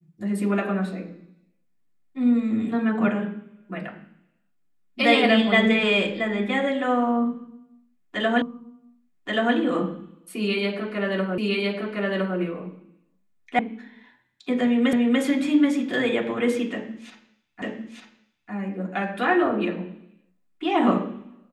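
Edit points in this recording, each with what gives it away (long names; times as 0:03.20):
0:08.42: the same again, the last 1.13 s
0:11.38: the same again, the last 1.01 s
0:13.59: cut off before it has died away
0:14.93: the same again, the last 0.29 s
0:17.62: the same again, the last 0.9 s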